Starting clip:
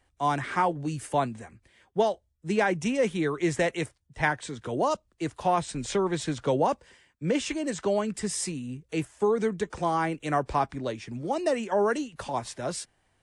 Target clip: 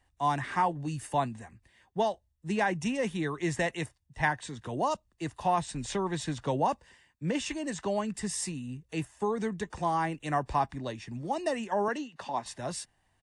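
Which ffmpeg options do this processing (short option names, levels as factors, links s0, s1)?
-filter_complex "[0:a]asettb=1/sr,asplit=3[s0][s1][s2];[s0]atrim=end=11.884[s3];[s1]atrim=start=11.88:end=12.46,asetpts=PTS-STARTPTS,afade=t=in:d=0.004:c=qsin,afade=t=out:st=0.576:d=0.004:c=qsin,acrossover=split=160 6800:gain=0.0891 1 0.0708[s4][s5][s6];[s4][s5][s6]amix=inputs=3:normalize=0[s7];[s2]atrim=start=12.456[s8];[s3][s7]acrossfade=d=0.004:c1=hsin:c2=qsin[s9];[s9][s8]acrossfade=d=0.004:c1=qsin:c2=hsin,aecho=1:1:1.1:0.38,volume=0.668"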